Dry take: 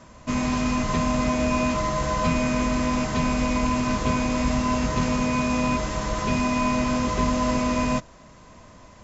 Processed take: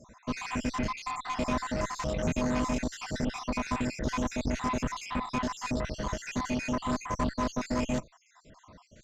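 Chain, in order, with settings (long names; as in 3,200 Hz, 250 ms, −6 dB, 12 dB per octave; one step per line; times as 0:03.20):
time-frequency cells dropped at random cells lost 60%
tube saturation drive 23 dB, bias 0.65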